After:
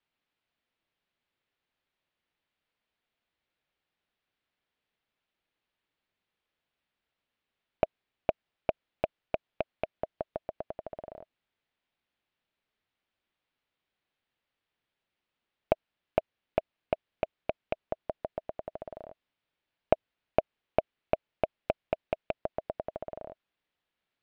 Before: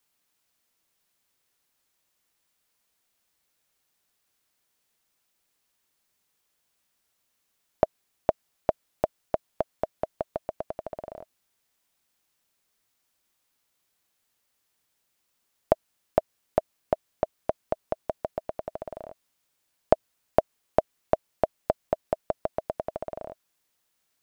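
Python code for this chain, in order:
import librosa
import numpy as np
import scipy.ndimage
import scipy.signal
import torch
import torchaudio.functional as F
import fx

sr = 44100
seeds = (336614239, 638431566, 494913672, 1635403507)

y = fx.rattle_buzz(x, sr, strikes_db=-26.0, level_db=-19.0)
y = scipy.signal.sosfilt(scipy.signal.butter(4, 3600.0, 'lowpass', fs=sr, output='sos'), y)
y = fx.peak_eq(y, sr, hz=1100.0, db=-2.5, octaves=0.77)
y = F.gain(torch.from_numpy(y), -4.0).numpy()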